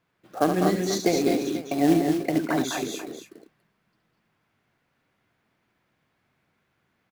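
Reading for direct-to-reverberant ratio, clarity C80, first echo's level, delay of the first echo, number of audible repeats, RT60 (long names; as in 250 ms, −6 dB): no reverb audible, no reverb audible, −7.0 dB, 71 ms, 4, no reverb audible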